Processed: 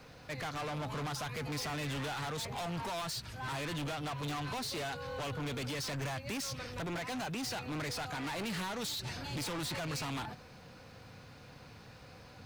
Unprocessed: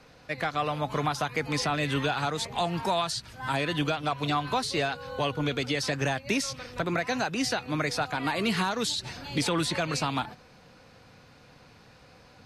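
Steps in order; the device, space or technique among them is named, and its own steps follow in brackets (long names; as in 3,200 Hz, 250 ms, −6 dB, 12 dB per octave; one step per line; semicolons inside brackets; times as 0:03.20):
open-reel tape (soft clipping −36.5 dBFS, distortion −5 dB; parametric band 100 Hz +4.5 dB 1.12 octaves; white noise bed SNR 39 dB)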